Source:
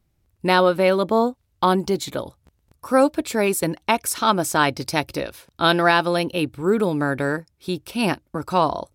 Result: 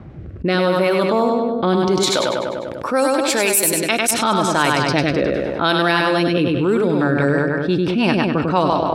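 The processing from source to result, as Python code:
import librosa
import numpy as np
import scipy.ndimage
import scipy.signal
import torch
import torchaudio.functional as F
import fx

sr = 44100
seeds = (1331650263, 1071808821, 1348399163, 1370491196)

p1 = x + fx.echo_feedback(x, sr, ms=99, feedback_pct=51, wet_db=-5.0, dry=0)
p2 = fx.rotary_switch(p1, sr, hz=0.8, then_hz=6.0, switch_at_s=6.35)
p3 = fx.riaa(p2, sr, side='recording', at=(2.03, 4.11))
p4 = fx.env_lowpass(p3, sr, base_hz=1400.0, full_db=-13.0)
p5 = fx.rider(p4, sr, range_db=4, speed_s=0.5)
p6 = scipy.signal.sosfilt(scipy.signal.butter(2, 83.0, 'highpass', fs=sr, output='sos'), p5)
y = fx.env_flatten(p6, sr, amount_pct=70)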